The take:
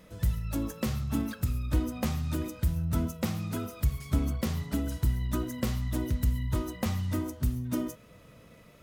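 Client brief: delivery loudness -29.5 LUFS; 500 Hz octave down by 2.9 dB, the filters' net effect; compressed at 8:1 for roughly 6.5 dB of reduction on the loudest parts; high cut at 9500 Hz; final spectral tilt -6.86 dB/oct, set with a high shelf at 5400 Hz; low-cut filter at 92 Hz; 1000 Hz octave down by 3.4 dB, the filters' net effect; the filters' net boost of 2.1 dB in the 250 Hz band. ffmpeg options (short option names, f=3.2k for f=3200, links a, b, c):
-af "highpass=92,lowpass=9.5k,equalizer=f=250:t=o:g=4,equalizer=f=500:t=o:g=-5,equalizer=f=1k:t=o:g=-3.5,highshelf=f=5.4k:g=3.5,acompressor=threshold=-31dB:ratio=8,volume=7.5dB"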